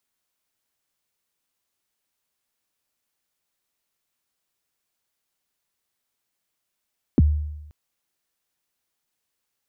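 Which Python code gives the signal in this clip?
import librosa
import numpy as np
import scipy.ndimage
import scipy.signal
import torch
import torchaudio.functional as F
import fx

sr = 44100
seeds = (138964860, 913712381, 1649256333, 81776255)

y = fx.drum_kick(sr, seeds[0], length_s=0.53, level_db=-10, start_hz=360.0, end_hz=75.0, sweep_ms=29.0, decay_s=0.96, click=False)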